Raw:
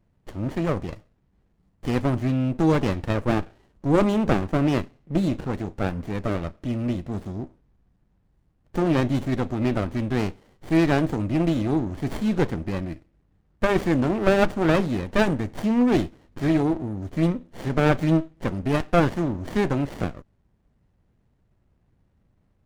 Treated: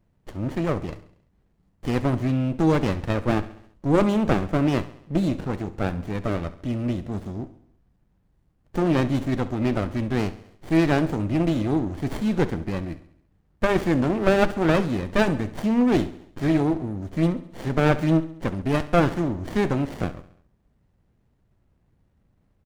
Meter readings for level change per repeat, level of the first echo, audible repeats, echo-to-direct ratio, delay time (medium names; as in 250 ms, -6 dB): -5.5 dB, -16.5 dB, 4, -15.0 dB, 68 ms